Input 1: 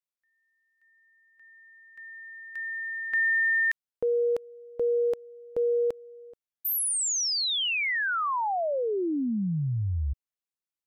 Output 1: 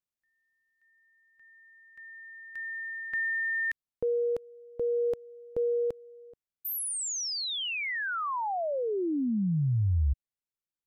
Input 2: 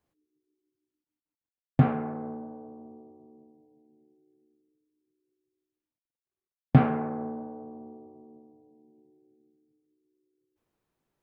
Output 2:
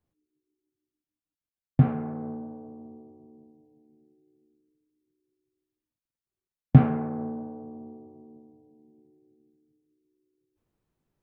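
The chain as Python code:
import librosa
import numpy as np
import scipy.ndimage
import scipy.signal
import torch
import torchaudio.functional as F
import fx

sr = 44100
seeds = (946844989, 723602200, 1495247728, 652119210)

p1 = fx.low_shelf(x, sr, hz=260.0, db=11.0)
p2 = fx.rider(p1, sr, range_db=4, speed_s=0.5)
p3 = p1 + F.gain(torch.from_numpy(p2), 0.0).numpy()
y = F.gain(torch.from_numpy(p3), -11.5).numpy()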